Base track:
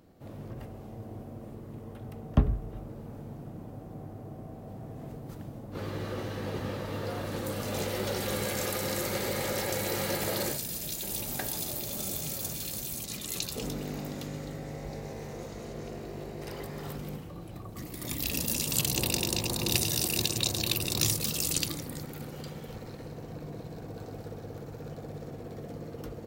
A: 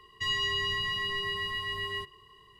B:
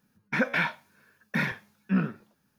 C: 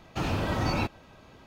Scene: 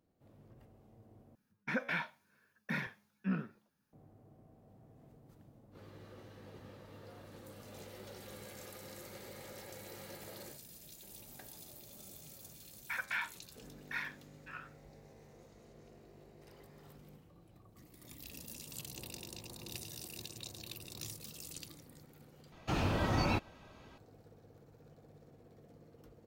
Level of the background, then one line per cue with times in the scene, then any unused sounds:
base track −18.5 dB
0:01.35: overwrite with B −10 dB
0:12.57: mix in B −10 dB + high-pass filter 890 Hz 24 dB per octave
0:22.52: overwrite with C −4 dB
not used: A

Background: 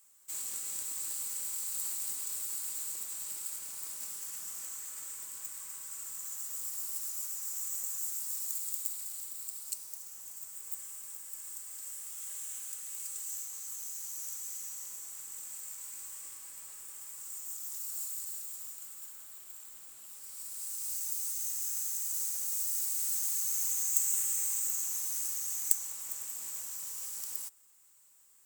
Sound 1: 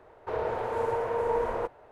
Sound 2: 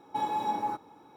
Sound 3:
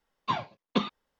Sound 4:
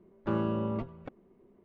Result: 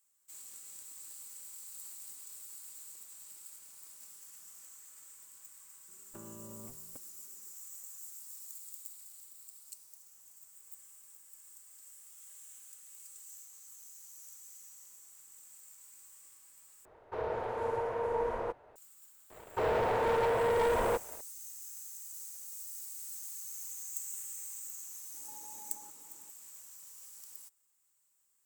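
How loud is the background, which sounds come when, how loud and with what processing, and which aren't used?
background −11.5 dB
0:05.88: mix in 4 −13.5 dB + downward compressor, threshold −32 dBFS
0:16.85: overwrite with 1 −5 dB
0:19.30: mix in 1 −6.5 dB + leveller curve on the samples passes 3
0:25.14: mix in 2 −12 dB + downward compressor, threshold −42 dBFS
not used: 3

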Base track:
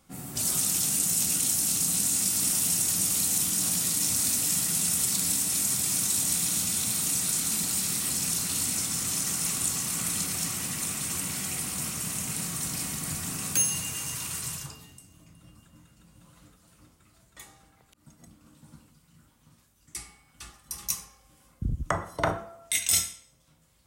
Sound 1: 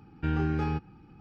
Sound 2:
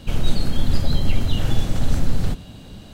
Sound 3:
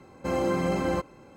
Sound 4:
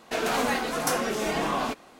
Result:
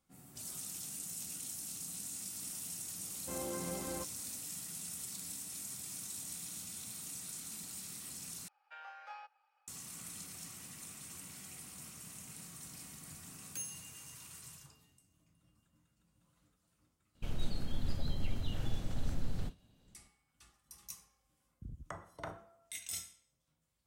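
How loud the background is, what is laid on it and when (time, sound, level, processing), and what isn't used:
base track −18 dB
0:03.03: mix in 3 −15.5 dB
0:08.48: overwrite with 1 −11.5 dB + Butterworth high-pass 540 Hz 96 dB per octave
0:17.15: mix in 2 −16.5 dB + downward expander −28 dBFS, range −11 dB
not used: 4

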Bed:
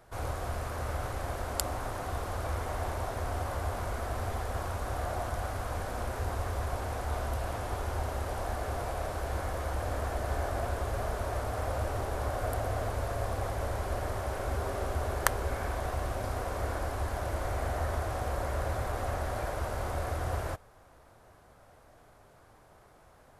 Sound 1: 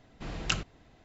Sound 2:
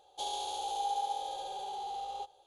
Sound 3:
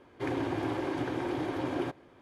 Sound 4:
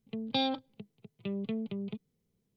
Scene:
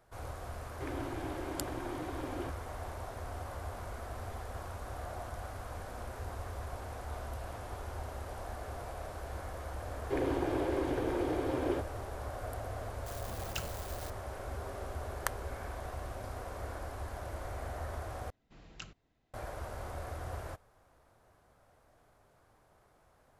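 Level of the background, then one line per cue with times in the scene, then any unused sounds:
bed −8 dB
0:00.60: mix in 3 −8.5 dB
0:09.90: mix in 3 −4.5 dB + parametric band 470 Hz +10 dB 0.65 octaves
0:13.06: mix in 1 −11.5 dB + spike at every zero crossing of −24.5 dBFS
0:18.30: overwrite with 1 −17.5 dB
not used: 2, 4

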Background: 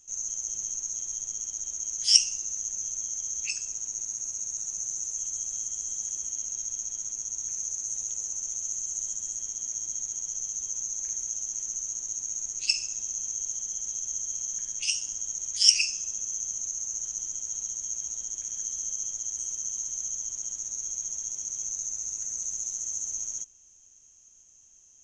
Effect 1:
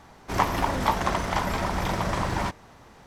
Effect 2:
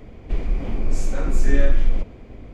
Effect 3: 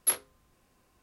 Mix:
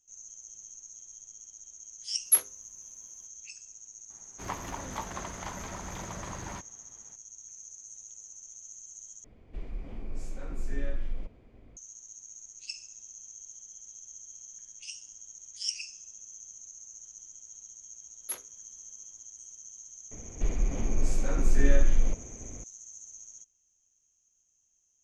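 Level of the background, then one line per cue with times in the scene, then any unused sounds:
background −14.5 dB
0:02.25: mix in 3 −4 dB + parametric band 11,000 Hz +8.5 dB 0.69 octaves
0:04.10: mix in 1 −13 dB + parametric band 760 Hz −2 dB
0:09.24: overwrite with 2 −15.5 dB
0:18.22: mix in 3 −10.5 dB
0:20.11: mix in 2 −5 dB

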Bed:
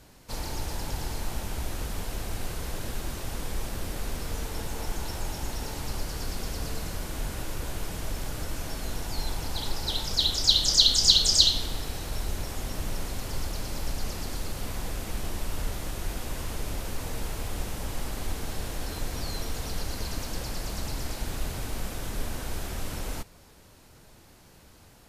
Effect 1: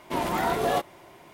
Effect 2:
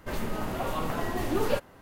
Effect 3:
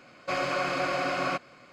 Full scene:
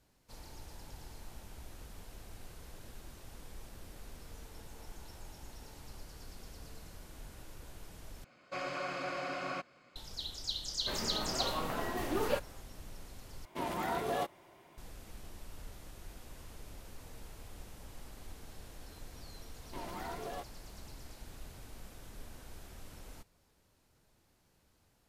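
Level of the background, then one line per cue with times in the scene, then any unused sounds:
bed −17 dB
0:08.24: overwrite with 3 −10 dB
0:10.80: mix in 2 −4 dB + low-shelf EQ 230 Hz −7 dB
0:13.45: overwrite with 1 −9.5 dB
0:19.62: mix in 1 −16.5 dB + brickwall limiter −16.5 dBFS

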